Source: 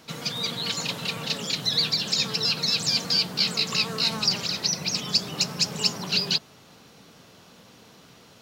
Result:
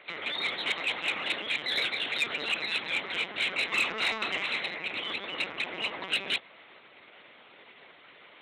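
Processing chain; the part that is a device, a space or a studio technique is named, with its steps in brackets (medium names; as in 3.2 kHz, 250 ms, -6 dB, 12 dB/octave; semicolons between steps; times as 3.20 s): 3.64–4.75 s: flutter echo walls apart 4.8 m, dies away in 0.27 s; talking toy (LPC vocoder at 8 kHz pitch kept; high-pass 380 Hz 12 dB/octave; peaking EQ 2.1 kHz +11.5 dB 0.48 oct; saturation -19.5 dBFS, distortion -17 dB)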